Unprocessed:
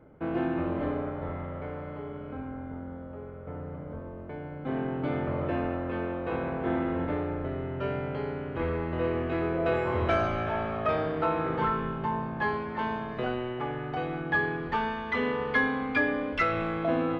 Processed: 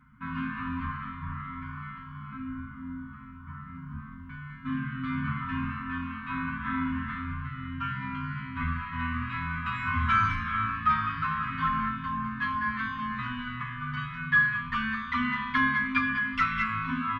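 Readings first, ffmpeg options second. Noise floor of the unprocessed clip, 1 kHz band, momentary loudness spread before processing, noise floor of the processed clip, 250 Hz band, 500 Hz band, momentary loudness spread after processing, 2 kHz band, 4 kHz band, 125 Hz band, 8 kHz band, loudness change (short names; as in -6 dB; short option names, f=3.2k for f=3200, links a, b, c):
-41 dBFS, +2.0 dB, 12 LU, -44 dBFS, -2.5 dB, under -40 dB, 16 LU, +4.0 dB, +2.5 dB, 0.0 dB, n/a, +0.5 dB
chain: -filter_complex "[0:a]equalizer=f=1.4k:w=0.85:g=5.5,aecho=1:1:203:0.398,afftfilt=real='re*(1-between(b*sr/4096,270,930))':imag='im*(1-between(b*sr/4096,270,930))':win_size=4096:overlap=0.75,asplit=2[a][b];[b]adelay=8.8,afreqshift=-2.3[c];[a][c]amix=inputs=2:normalize=1,volume=3dB"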